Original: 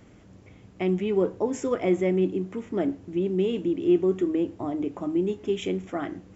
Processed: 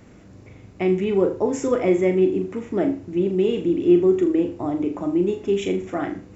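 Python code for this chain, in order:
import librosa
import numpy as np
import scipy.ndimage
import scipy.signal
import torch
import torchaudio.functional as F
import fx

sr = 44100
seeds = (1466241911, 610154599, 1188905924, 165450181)

y = fx.notch(x, sr, hz=3200.0, q=12.0)
y = fx.room_flutter(y, sr, wall_m=6.9, rt60_s=0.33)
y = F.gain(torch.from_numpy(y), 4.0).numpy()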